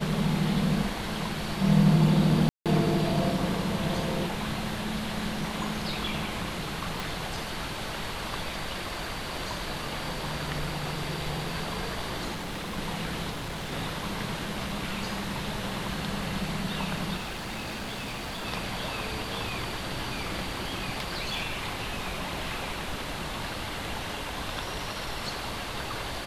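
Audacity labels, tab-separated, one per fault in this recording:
2.490000	2.660000	drop-out 167 ms
7.000000	7.000000	click
12.330000	12.780000	clipping −31.5 dBFS
13.300000	13.730000	clipping −31.5 dBFS
17.160000	18.460000	clipping −32 dBFS
20.480000	23.280000	clipping −25 dBFS

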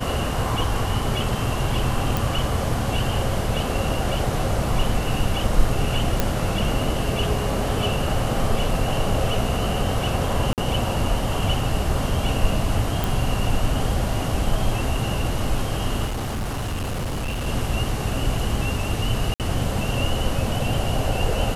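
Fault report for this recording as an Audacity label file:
2.170000	2.170000	click
6.200000	6.200000	click
10.530000	10.580000	drop-out 48 ms
13.040000	13.040000	click
16.050000	17.470000	clipping −23 dBFS
19.340000	19.400000	drop-out 58 ms

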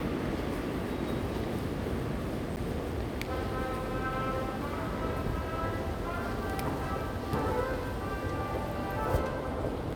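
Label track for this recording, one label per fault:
2.560000	2.570000	drop-out 9.2 ms

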